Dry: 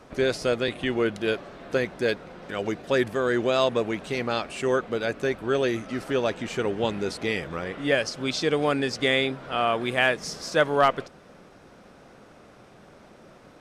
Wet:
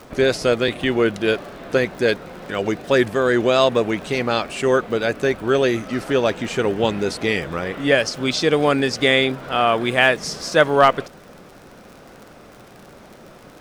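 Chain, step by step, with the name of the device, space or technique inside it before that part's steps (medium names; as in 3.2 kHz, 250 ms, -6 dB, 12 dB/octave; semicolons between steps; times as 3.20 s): vinyl LP (wow and flutter 23 cents; crackle 54 per s -39 dBFS; pink noise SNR 38 dB); trim +6.5 dB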